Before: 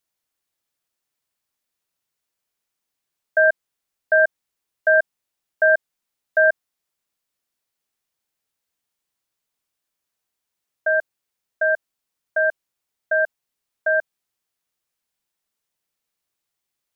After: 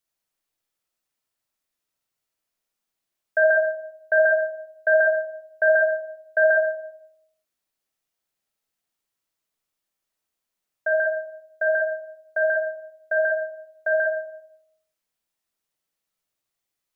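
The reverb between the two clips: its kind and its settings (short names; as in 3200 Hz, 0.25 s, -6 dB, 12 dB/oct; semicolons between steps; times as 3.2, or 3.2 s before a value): digital reverb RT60 0.82 s, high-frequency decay 0.3×, pre-delay 15 ms, DRR 1.5 dB; gain -3.5 dB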